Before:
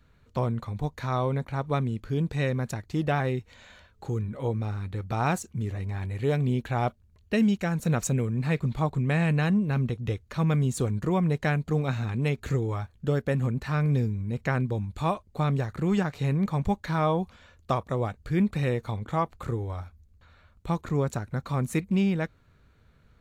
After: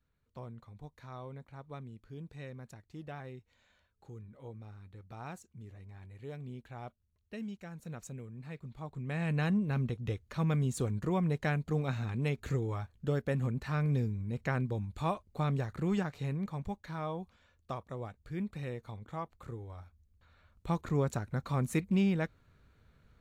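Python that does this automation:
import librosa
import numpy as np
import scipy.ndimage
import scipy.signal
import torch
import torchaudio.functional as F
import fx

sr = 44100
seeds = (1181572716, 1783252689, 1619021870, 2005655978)

y = fx.gain(x, sr, db=fx.line((8.75, -18.5), (9.41, -6.0), (15.87, -6.0), (16.75, -13.0), (19.7, -13.0), (20.77, -4.0)))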